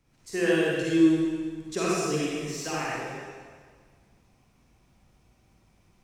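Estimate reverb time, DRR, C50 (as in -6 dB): 1.7 s, -7.5 dB, -5.5 dB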